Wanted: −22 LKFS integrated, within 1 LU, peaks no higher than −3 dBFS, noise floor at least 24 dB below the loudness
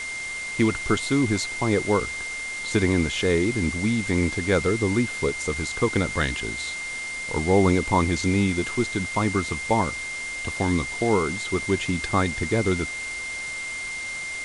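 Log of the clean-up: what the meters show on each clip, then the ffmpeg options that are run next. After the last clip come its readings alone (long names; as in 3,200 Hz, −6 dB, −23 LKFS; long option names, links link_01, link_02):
interfering tone 2,100 Hz; level of the tone −30 dBFS; background noise floor −32 dBFS; target noise floor −49 dBFS; integrated loudness −24.5 LKFS; sample peak −7.5 dBFS; target loudness −22.0 LKFS
→ -af "bandreject=frequency=2100:width=30"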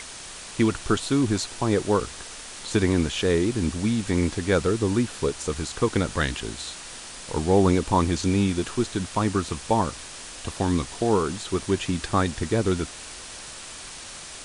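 interfering tone none found; background noise floor −40 dBFS; target noise floor −49 dBFS
→ -af "afftdn=noise_reduction=9:noise_floor=-40"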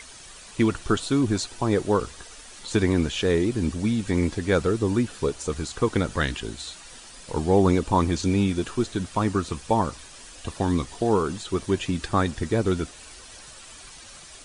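background noise floor −45 dBFS; target noise floor −49 dBFS
→ -af "afftdn=noise_reduction=6:noise_floor=-45"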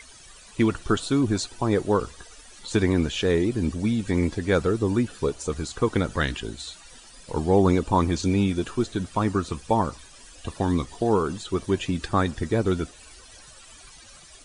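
background noise floor −49 dBFS; integrated loudness −25.0 LKFS; sample peak −8.0 dBFS; target loudness −22.0 LKFS
→ -af "volume=3dB"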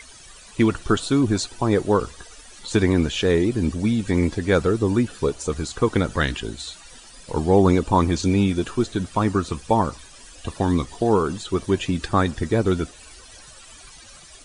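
integrated loudness −22.0 LKFS; sample peak −5.0 dBFS; background noise floor −46 dBFS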